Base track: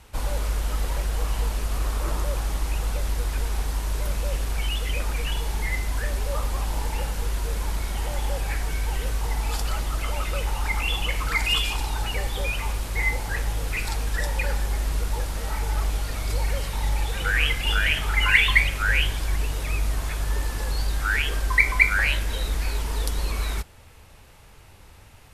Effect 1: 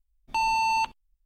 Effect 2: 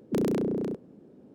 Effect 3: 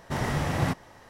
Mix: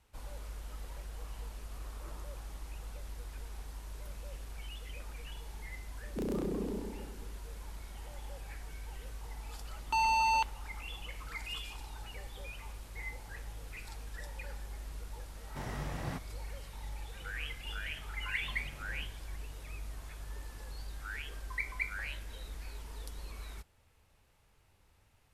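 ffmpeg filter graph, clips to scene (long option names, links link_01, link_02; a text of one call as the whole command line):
ffmpeg -i bed.wav -i cue0.wav -i cue1.wav -i cue2.wav -filter_complex "[3:a]asplit=2[link_01][link_02];[0:a]volume=-18.5dB[link_03];[2:a]asplit=2[link_04][link_05];[link_05]adelay=128,lowpass=frequency=2000:poles=1,volume=-4dB,asplit=2[link_06][link_07];[link_07]adelay=128,lowpass=frequency=2000:poles=1,volume=0.53,asplit=2[link_08][link_09];[link_09]adelay=128,lowpass=frequency=2000:poles=1,volume=0.53,asplit=2[link_10][link_11];[link_11]adelay=128,lowpass=frequency=2000:poles=1,volume=0.53,asplit=2[link_12][link_13];[link_13]adelay=128,lowpass=frequency=2000:poles=1,volume=0.53,asplit=2[link_14][link_15];[link_15]adelay=128,lowpass=frequency=2000:poles=1,volume=0.53,asplit=2[link_16][link_17];[link_17]adelay=128,lowpass=frequency=2000:poles=1,volume=0.53[link_18];[link_04][link_06][link_08][link_10][link_12][link_14][link_16][link_18]amix=inputs=8:normalize=0[link_19];[1:a]aeval=exprs='sgn(val(0))*max(abs(val(0))-0.00376,0)':channel_layout=same[link_20];[link_02]acompressor=threshold=-34dB:ratio=6:attack=3.2:release=140:knee=1:detection=peak[link_21];[link_19]atrim=end=1.34,asetpts=PTS-STARTPTS,volume=-10dB,afade=type=in:duration=0.004:curve=hsin,afade=type=out:start_time=1.336:duration=0.004:curve=hsin,adelay=6040[link_22];[link_20]atrim=end=1.25,asetpts=PTS-STARTPTS,volume=-3.5dB,afade=type=in:duration=0.004:curve=hsin,afade=type=out:start_time=1.246:duration=0.004:curve=hsin,adelay=9580[link_23];[link_01]atrim=end=1.09,asetpts=PTS-STARTPTS,volume=-13dB,afade=type=in:duration=0.004:curve=hsin,afade=type=out:start_time=1.086:duration=0.004:curve=hsin,adelay=15450[link_24];[link_21]atrim=end=1.09,asetpts=PTS-STARTPTS,volume=-16.5dB,afade=type=in:duration=0.004:curve=hsin,afade=type=out:start_time=1.086:duration=0.004:curve=hsin,adelay=18320[link_25];[link_03][link_22][link_23][link_24][link_25]amix=inputs=5:normalize=0" out.wav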